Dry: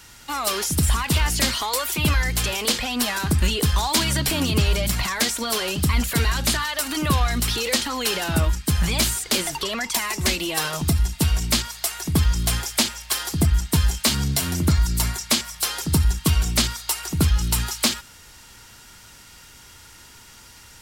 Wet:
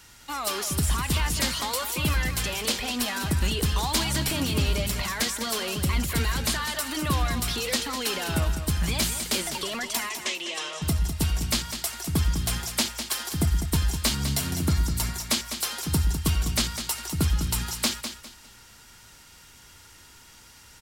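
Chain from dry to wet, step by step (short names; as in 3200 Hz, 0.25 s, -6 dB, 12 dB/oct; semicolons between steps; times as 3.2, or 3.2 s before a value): 10.09–10.82 speaker cabinet 480–7400 Hz, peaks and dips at 800 Hz -7 dB, 1500 Hz -8 dB, 3100 Hz +3 dB, 4500 Hz -8 dB; feedback echo 0.202 s, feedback 28%, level -9 dB; gain -5 dB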